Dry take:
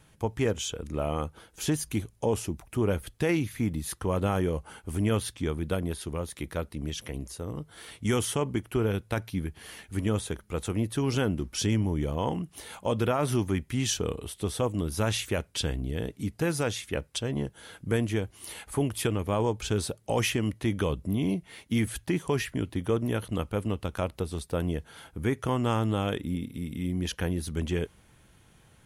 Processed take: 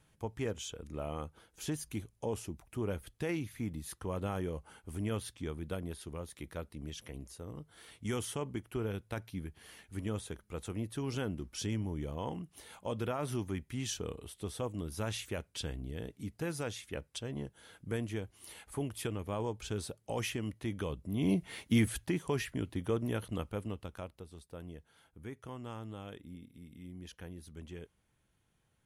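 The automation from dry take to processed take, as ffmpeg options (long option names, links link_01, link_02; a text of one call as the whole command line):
ffmpeg -i in.wav -af "volume=2dB,afade=type=in:start_time=21.11:duration=0.34:silence=0.266073,afade=type=out:start_time=21.45:duration=0.7:silence=0.398107,afade=type=out:start_time=23.23:duration=0.98:silence=0.266073" out.wav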